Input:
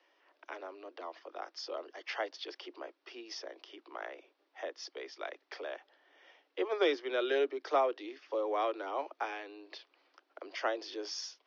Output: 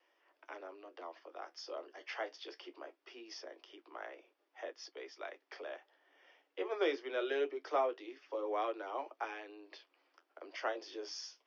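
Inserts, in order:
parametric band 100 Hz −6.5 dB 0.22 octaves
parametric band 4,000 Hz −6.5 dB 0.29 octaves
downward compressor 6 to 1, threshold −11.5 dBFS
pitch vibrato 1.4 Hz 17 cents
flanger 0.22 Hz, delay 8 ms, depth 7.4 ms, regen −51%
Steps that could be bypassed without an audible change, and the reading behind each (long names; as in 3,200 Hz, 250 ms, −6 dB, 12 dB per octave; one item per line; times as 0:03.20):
parametric band 100 Hz: nothing at its input below 240 Hz
downward compressor, threshold −11.5 dBFS: peak of its input −16.5 dBFS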